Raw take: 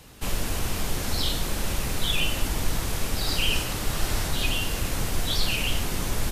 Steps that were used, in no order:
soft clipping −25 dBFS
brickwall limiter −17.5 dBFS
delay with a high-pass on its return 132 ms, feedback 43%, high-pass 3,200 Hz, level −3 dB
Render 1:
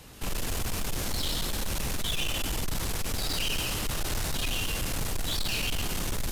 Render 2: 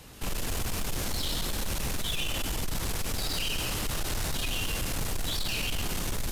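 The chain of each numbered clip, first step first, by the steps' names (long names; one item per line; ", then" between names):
delay with a high-pass on its return, then soft clipping, then brickwall limiter
brickwall limiter, then delay with a high-pass on its return, then soft clipping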